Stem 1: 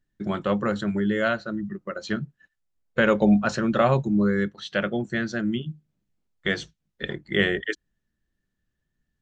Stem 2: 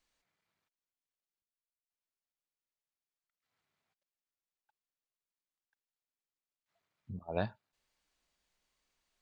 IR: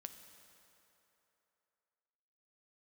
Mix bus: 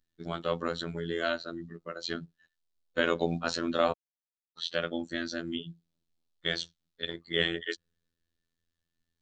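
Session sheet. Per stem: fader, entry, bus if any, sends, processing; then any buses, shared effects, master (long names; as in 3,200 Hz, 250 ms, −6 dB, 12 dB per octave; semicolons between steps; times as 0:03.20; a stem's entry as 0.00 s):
−3.5 dB, 0.00 s, muted 0:03.92–0:04.57, no send, octave-band graphic EQ 125/2,000/4,000 Hz −8/−4/+10 dB
−14.0 dB, 0.00 s, send −12 dB, elliptic band-stop filter 480–1,100 Hz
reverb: on, RT60 3.2 s, pre-delay 5 ms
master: phases set to zero 84.1 Hz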